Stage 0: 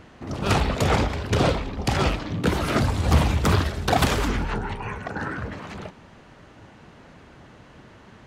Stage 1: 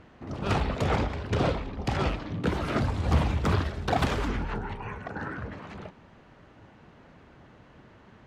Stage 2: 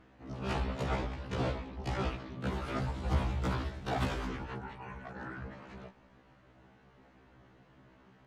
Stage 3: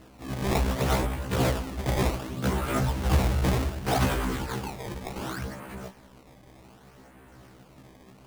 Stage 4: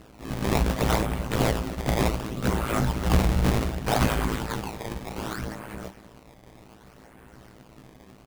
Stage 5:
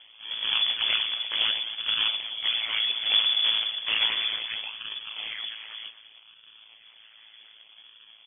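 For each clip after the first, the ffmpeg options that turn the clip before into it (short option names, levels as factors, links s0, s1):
-af "aemphasis=mode=reproduction:type=50kf,volume=0.562"
-af "afftfilt=real='re*1.73*eq(mod(b,3),0)':imag='im*1.73*eq(mod(b,3),0)':win_size=2048:overlap=0.75,volume=0.562"
-af "acrusher=samples=18:mix=1:aa=0.000001:lfo=1:lforange=28.8:lforate=0.66,asoftclip=type=tanh:threshold=0.0891,volume=2.82"
-filter_complex "[0:a]asplit=2[s0][s1];[s1]adelay=250.7,volume=0.158,highshelf=f=4000:g=-5.64[s2];[s0][s2]amix=inputs=2:normalize=0,tremolo=f=110:d=0.919,volume=1.88"
-af "lowpass=f=3000:t=q:w=0.5098,lowpass=f=3000:t=q:w=0.6013,lowpass=f=3000:t=q:w=0.9,lowpass=f=3000:t=q:w=2.563,afreqshift=-3500,volume=0.75"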